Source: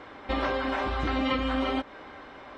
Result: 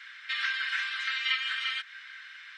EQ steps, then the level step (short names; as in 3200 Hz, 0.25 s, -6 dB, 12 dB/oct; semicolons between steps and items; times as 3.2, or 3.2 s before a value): elliptic high-pass 1600 Hz, stop band 60 dB; +6.5 dB